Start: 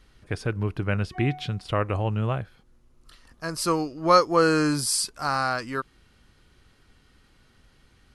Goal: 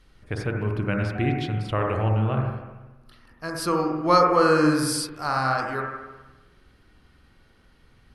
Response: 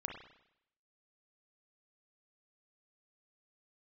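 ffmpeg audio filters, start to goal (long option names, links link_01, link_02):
-filter_complex "[0:a]asetnsamples=nb_out_samples=441:pad=0,asendcmd='2.17 equalizer g -14.5;3.45 equalizer g -6.5',equalizer=frequency=7300:width=2:gain=-2.5[link_01];[1:a]atrim=start_sample=2205,asetrate=29988,aresample=44100[link_02];[link_01][link_02]afir=irnorm=-1:irlink=0"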